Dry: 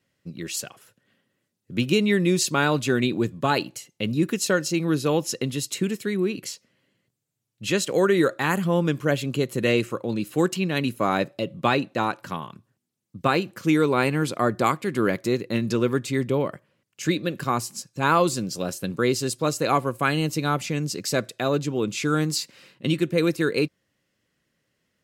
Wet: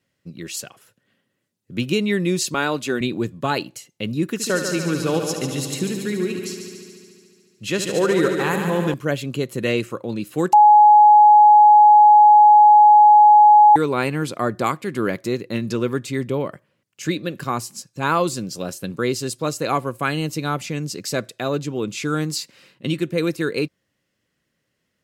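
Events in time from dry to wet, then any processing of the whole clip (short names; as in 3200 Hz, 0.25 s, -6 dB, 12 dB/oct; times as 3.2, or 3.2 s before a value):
2.54–3.01 HPF 210 Hz
4.28–8.94 multi-head echo 72 ms, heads first and second, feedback 70%, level -10 dB
10.53–13.76 bleep 840 Hz -6.5 dBFS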